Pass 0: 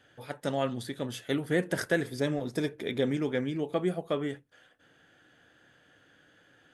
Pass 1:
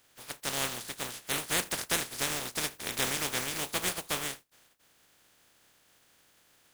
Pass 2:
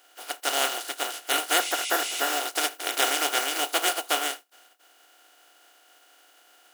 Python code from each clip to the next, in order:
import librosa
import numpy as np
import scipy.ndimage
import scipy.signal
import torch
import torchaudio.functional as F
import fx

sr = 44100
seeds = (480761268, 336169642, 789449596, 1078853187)

y1 = fx.spec_flatten(x, sr, power=0.2)
y1 = F.gain(torch.from_numpy(y1), -2.5).numpy()
y2 = fx.spec_repair(y1, sr, seeds[0], start_s=1.61, length_s=0.73, low_hz=2000.0, high_hz=11000.0, source='after')
y2 = fx.brickwall_highpass(y2, sr, low_hz=270.0)
y2 = fx.small_body(y2, sr, hz=(730.0, 1400.0, 2900.0), ring_ms=40, db=13)
y2 = F.gain(torch.from_numpy(y2), 5.0).numpy()